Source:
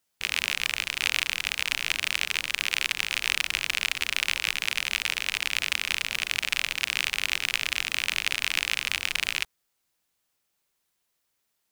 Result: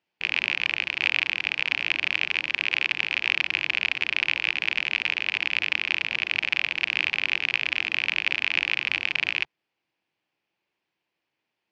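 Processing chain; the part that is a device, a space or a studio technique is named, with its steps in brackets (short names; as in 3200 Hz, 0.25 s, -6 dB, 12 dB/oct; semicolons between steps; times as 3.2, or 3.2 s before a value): guitar cabinet (speaker cabinet 110–4100 Hz, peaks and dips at 140 Hz +3 dB, 330 Hz +7 dB, 850 Hz +3 dB, 1300 Hz -5 dB, 2500 Hz +5 dB, 3800 Hz -6 dB); gain +1 dB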